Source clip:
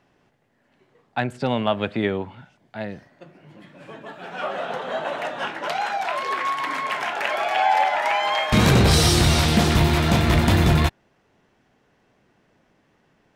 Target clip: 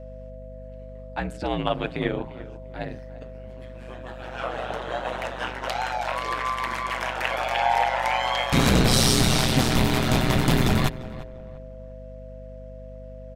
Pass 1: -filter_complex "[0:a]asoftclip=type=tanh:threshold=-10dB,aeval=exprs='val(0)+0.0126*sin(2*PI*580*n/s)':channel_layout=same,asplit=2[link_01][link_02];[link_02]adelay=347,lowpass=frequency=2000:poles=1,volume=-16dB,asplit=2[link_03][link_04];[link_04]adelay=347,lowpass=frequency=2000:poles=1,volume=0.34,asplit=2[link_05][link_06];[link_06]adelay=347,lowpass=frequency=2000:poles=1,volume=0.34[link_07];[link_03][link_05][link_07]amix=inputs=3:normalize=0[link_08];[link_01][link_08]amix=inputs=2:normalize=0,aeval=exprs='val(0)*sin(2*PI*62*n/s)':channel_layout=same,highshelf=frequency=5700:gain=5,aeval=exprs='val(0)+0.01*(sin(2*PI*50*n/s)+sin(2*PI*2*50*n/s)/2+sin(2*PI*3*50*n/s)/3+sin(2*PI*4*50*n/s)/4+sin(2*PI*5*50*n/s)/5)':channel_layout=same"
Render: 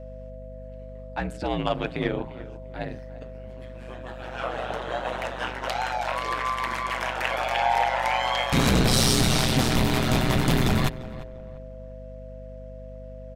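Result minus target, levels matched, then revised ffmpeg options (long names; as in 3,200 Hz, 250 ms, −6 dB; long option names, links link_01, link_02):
soft clipping: distortion +17 dB
-filter_complex "[0:a]asoftclip=type=tanh:threshold=0dB,aeval=exprs='val(0)+0.0126*sin(2*PI*580*n/s)':channel_layout=same,asplit=2[link_01][link_02];[link_02]adelay=347,lowpass=frequency=2000:poles=1,volume=-16dB,asplit=2[link_03][link_04];[link_04]adelay=347,lowpass=frequency=2000:poles=1,volume=0.34,asplit=2[link_05][link_06];[link_06]adelay=347,lowpass=frequency=2000:poles=1,volume=0.34[link_07];[link_03][link_05][link_07]amix=inputs=3:normalize=0[link_08];[link_01][link_08]amix=inputs=2:normalize=0,aeval=exprs='val(0)*sin(2*PI*62*n/s)':channel_layout=same,highshelf=frequency=5700:gain=5,aeval=exprs='val(0)+0.01*(sin(2*PI*50*n/s)+sin(2*PI*2*50*n/s)/2+sin(2*PI*3*50*n/s)/3+sin(2*PI*4*50*n/s)/4+sin(2*PI*5*50*n/s)/5)':channel_layout=same"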